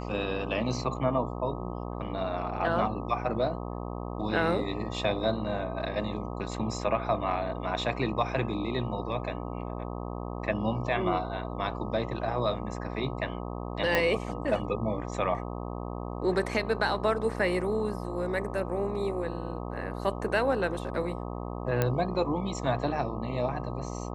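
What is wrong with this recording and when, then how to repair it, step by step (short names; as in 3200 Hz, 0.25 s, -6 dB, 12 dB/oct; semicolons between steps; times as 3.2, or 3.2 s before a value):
buzz 60 Hz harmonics 21 -36 dBFS
13.95 pop -10 dBFS
21.82 pop -12 dBFS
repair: de-click; de-hum 60 Hz, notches 21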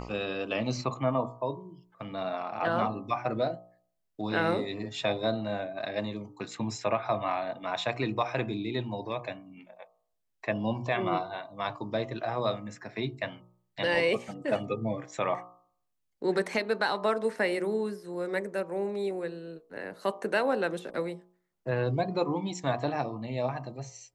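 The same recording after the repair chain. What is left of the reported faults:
13.95 pop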